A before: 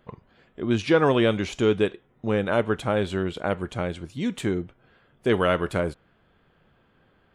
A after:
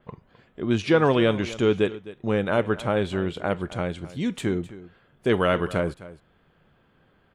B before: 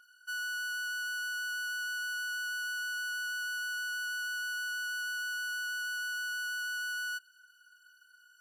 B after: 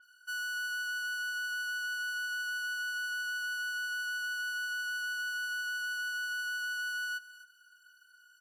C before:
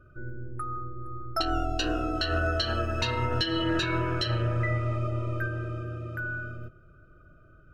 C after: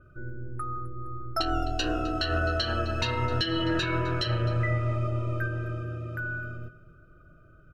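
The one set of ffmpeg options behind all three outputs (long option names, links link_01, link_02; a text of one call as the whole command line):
ffmpeg -i in.wav -af "equalizer=frequency=160:width_type=o:width=0.38:gain=2.5,aecho=1:1:259:0.141,adynamicequalizer=threshold=0.00794:dfrequency=5200:dqfactor=0.7:tfrequency=5200:tqfactor=0.7:attack=5:release=100:ratio=0.375:range=1.5:mode=cutabove:tftype=highshelf" out.wav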